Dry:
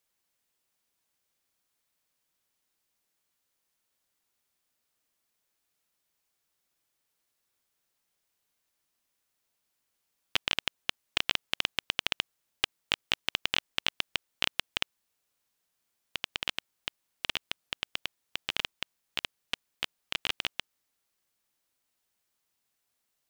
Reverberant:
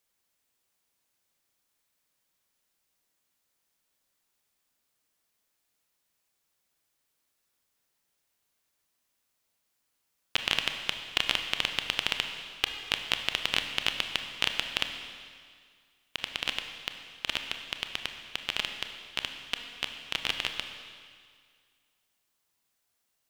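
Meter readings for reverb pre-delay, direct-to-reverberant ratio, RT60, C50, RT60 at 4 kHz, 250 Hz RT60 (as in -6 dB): 26 ms, 5.5 dB, 2.0 s, 7.0 dB, 2.0 s, 2.0 s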